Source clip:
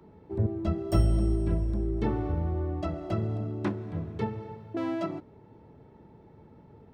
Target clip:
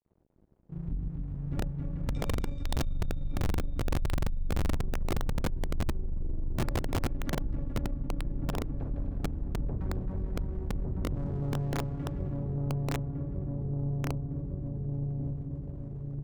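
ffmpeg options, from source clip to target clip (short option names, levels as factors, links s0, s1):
-filter_complex "[0:a]aeval=exprs='sgn(val(0))*max(abs(val(0))-0.00335,0)':c=same,asplit=2[s0][s1];[s1]adelay=494,lowpass=f=1400:p=1,volume=0.708,asplit=2[s2][s3];[s3]adelay=494,lowpass=f=1400:p=1,volume=0.5,asplit=2[s4][s5];[s5]adelay=494,lowpass=f=1400:p=1,volume=0.5,asplit=2[s6][s7];[s7]adelay=494,lowpass=f=1400:p=1,volume=0.5,asplit=2[s8][s9];[s9]adelay=494,lowpass=f=1400:p=1,volume=0.5,asplit=2[s10][s11];[s11]adelay=494,lowpass=f=1400:p=1,volume=0.5,asplit=2[s12][s13];[s13]adelay=494,lowpass=f=1400:p=1,volume=0.5[s14];[s2][s4][s6][s8][s10][s12][s14]amix=inputs=7:normalize=0[s15];[s0][s15]amix=inputs=2:normalize=0,dynaudnorm=f=350:g=9:m=5.62,highshelf=f=2100:g=-6,acompressor=threshold=0.0398:ratio=16,asetrate=18846,aresample=44100,asubboost=boost=2:cutoff=52,asplit=2[s16][s17];[s17]aecho=0:1:270|432|529.2|587.5|622.5:0.631|0.398|0.251|0.158|0.1[s18];[s16][s18]amix=inputs=2:normalize=0,aeval=exprs='(mod(10*val(0)+1,2)-1)/10':c=same,aeval=exprs='(tanh(17.8*val(0)+0.35)-tanh(0.35))/17.8':c=same"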